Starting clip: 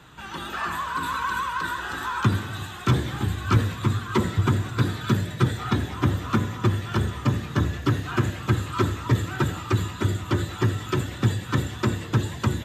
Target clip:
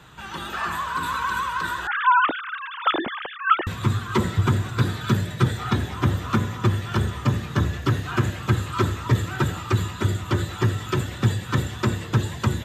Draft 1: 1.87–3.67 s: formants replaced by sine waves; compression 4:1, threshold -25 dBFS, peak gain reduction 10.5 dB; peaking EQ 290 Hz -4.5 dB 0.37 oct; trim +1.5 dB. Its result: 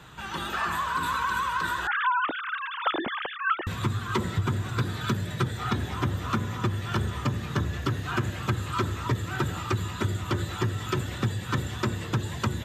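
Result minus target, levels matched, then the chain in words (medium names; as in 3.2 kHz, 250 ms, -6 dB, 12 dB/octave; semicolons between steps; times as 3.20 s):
compression: peak gain reduction +10.5 dB
1.87–3.67 s: formants replaced by sine waves; peaking EQ 290 Hz -4.5 dB 0.37 oct; trim +1.5 dB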